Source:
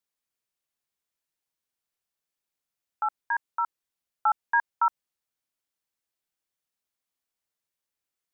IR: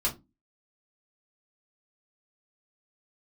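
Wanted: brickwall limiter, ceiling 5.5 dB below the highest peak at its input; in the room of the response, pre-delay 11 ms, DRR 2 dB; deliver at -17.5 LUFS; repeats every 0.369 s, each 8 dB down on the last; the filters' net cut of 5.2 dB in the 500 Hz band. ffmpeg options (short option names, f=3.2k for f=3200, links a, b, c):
-filter_complex "[0:a]equalizer=f=500:t=o:g=-8.5,alimiter=limit=-21dB:level=0:latency=1,aecho=1:1:369|738|1107|1476|1845:0.398|0.159|0.0637|0.0255|0.0102,asplit=2[a][b];[1:a]atrim=start_sample=2205,adelay=11[c];[b][c]afir=irnorm=-1:irlink=0,volume=-9dB[d];[a][d]amix=inputs=2:normalize=0,volume=13.5dB"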